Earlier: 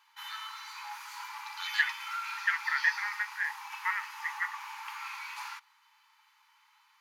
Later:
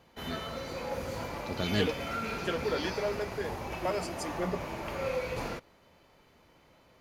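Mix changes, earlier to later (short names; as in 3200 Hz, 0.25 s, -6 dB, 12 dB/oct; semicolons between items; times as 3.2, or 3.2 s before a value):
second voice: remove synth low-pass 1900 Hz, resonance Q 12; master: remove brick-wall FIR high-pass 810 Hz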